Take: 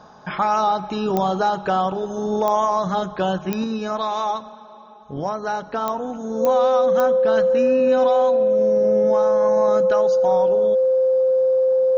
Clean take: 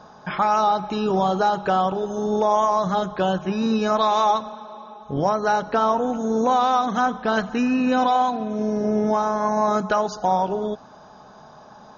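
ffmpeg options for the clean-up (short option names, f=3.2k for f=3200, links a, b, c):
-af "adeclick=t=4,bandreject=f=520:w=30,asetnsamples=n=441:p=0,asendcmd='3.64 volume volume 4.5dB',volume=0dB"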